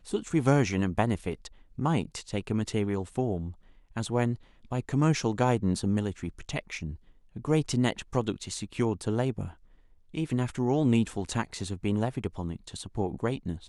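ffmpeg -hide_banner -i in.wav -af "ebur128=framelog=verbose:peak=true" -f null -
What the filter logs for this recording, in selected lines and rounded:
Integrated loudness:
  I:         -29.7 LUFS
  Threshold: -40.2 LUFS
Loudness range:
  LRA:         2.4 LU
  Threshold: -50.3 LUFS
  LRA low:   -31.6 LUFS
  LRA high:  -29.2 LUFS
True peak:
  Peak:       -8.1 dBFS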